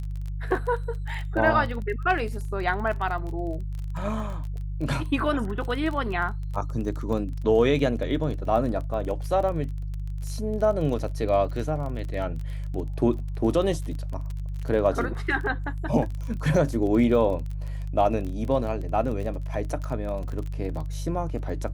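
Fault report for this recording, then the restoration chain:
crackle 25 per s -32 dBFS
hum 50 Hz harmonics 3 -31 dBFS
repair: de-click; de-hum 50 Hz, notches 3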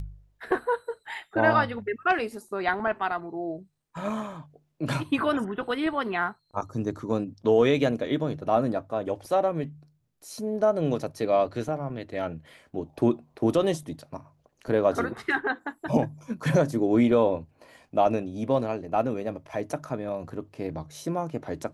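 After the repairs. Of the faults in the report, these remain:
nothing left

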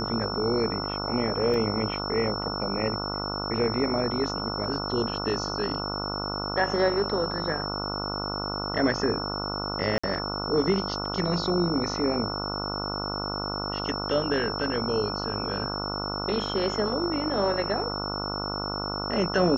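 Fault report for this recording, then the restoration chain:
buzz 50 Hz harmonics 29 -33 dBFS
whine 5.4 kHz -33 dBFS
1.54 s: dropout 2 ms
9.98–10.04 s: dropout 55 ms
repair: band-stop 5.4 kHz, Q 30; de-hum 50 Hz, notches 29; interpolate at 1.54 s, 2 ms; interpolate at 9.98 s, 55 ms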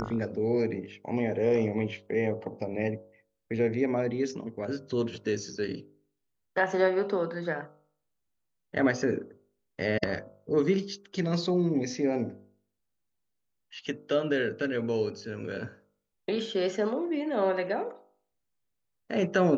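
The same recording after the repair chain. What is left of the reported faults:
nothing left

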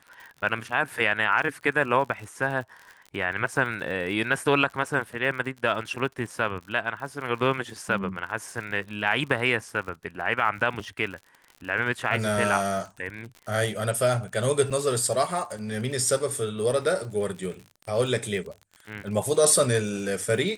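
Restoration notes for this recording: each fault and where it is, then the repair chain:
crackle 59 per s -35 dBFS
14.70–14.71 s: dropout 6.6 ms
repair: de-click; interpolate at 14.70 s, 6.6 ms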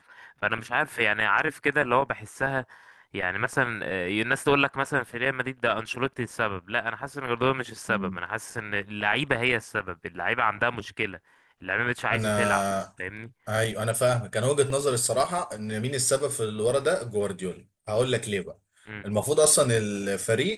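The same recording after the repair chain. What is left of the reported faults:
nothing left

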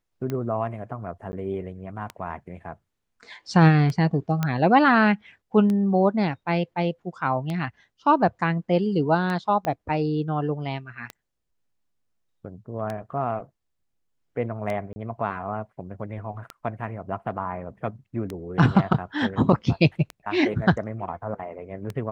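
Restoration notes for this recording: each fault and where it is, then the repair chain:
tick 33 1/3 rpm -17 dBFS
1.32–1.33 s: dropout 10 ms
4.43 s: pop -11 dBFS
9.65 s: pop -15 dBFS
14.93–14.96 s: dropout 30 ms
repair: de-click; interpolate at 1.32 s, 10 ms; interpolate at 14.93 s, 30 ms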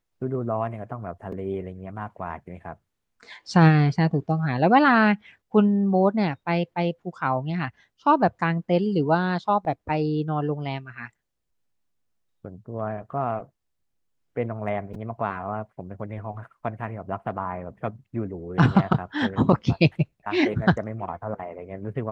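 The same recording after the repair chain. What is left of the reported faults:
9.65 s: pop

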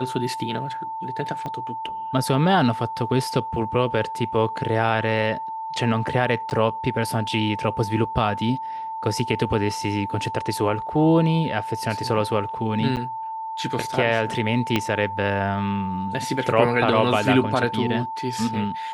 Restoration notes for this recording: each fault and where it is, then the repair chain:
whine 890 Hz -28 dBFS
1.46 s: pop -19 dBFS
6.50–6.51 s: dropout 9.4 ms
12.96–12.97 s: dropout 8.7 ms
14.76 s: pop -7 dBFS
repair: de-click; band-stop 890 Hz, Q 30; interpolate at 6.50 s, 9.4 ms; interpolate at 12.96 s, 8.7 ms

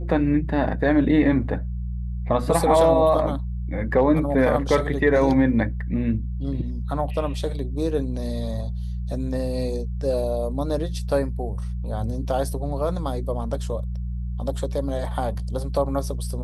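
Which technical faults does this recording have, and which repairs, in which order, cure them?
hum 60 Hz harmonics 3 -28 dBFS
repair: de-hum 60 Hz, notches 3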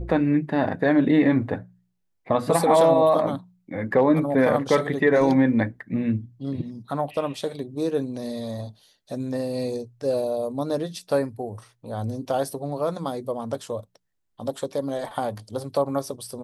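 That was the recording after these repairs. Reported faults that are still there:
nothing left

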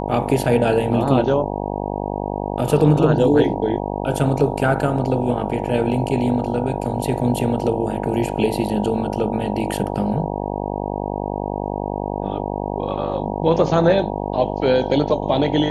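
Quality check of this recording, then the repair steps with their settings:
buzz 50 Hz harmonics 19 -25 dBFS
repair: de-hum 50 Hz, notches 19

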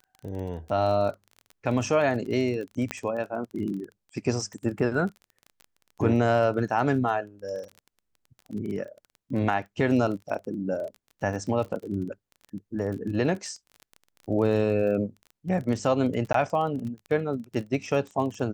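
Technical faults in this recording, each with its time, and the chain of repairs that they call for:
crackle 23 per s -34 dBFS
2.91 s: pop -14 dBFS
16.33–16.34 s: dropout 13 ms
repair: de-click; interpolate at 16.33 s, 13 ms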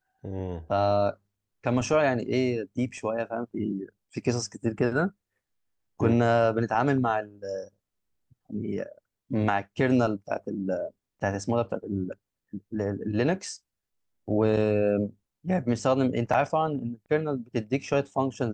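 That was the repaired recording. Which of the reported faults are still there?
nothing left

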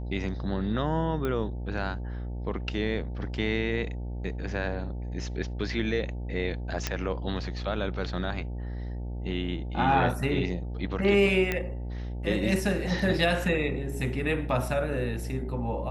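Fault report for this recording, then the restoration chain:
buzz 60 Hz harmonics 15 -34 dBFS
1.25 s: pop -19 dBFS
6.87 s: pop -11 dBFS
11.52 s: pop -13 dBFS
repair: de-click; de-hum 60 Hz, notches 15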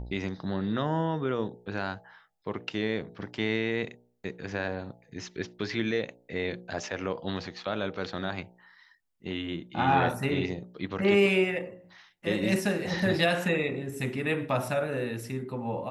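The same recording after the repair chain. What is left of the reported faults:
1.25 s: pop

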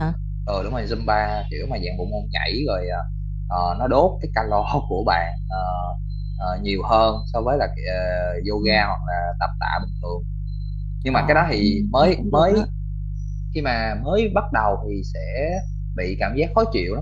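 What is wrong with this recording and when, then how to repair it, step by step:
hum 50 Hz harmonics 3 -27 dBFS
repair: de-hum 50 Hz, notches 3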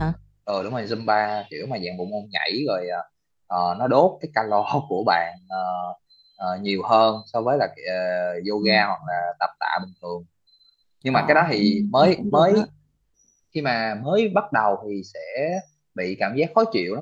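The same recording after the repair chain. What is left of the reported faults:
nothing left

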